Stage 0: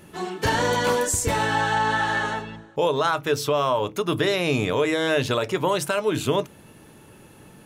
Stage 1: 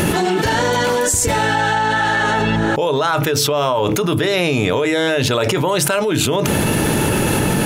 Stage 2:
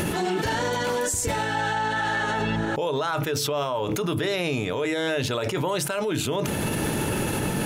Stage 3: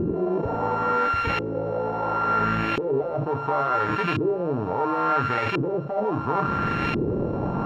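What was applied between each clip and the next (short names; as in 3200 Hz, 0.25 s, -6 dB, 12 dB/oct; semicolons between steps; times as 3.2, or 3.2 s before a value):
notch 1100 Hz, Q 14; fast leveller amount 100%; gain +1.5 dB
limiter -8.5 dBFS, peak gain reduction 7 dB; gain -8 dB
sample sorter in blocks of 32 samples; thin delay 0.166 s, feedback 84%, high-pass 3700 Hz, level -3 dB; LFO low-pass saw up 0.72 Hz 360–2500 Hz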